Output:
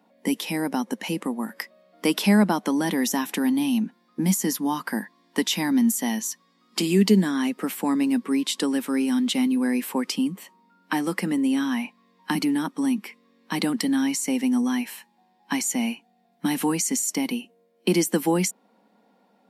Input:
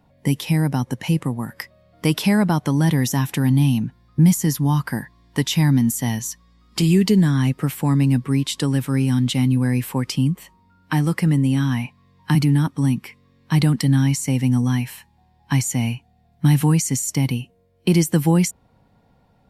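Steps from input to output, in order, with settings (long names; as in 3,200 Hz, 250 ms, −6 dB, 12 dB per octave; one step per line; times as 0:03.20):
elliptic high-pass filter 200 Hz, stop band 40 dB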